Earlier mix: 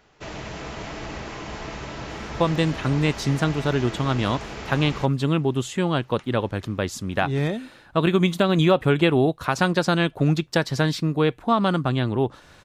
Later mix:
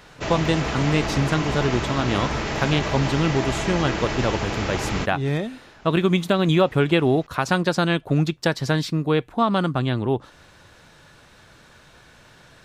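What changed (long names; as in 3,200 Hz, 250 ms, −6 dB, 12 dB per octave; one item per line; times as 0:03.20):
speech: entry −2.10 s
background +8.0 dB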